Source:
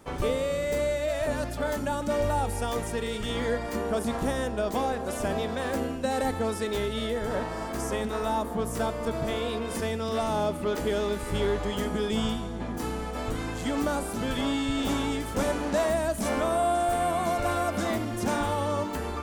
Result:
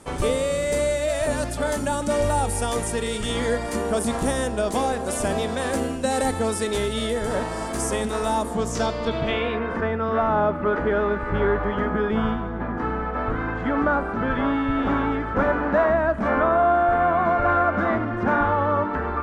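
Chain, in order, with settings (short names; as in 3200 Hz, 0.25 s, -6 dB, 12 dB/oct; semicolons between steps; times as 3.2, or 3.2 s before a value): low-pass sweep 9500 Hz -> 1500 Hz, 8.45–9.75; gain +4.5 dB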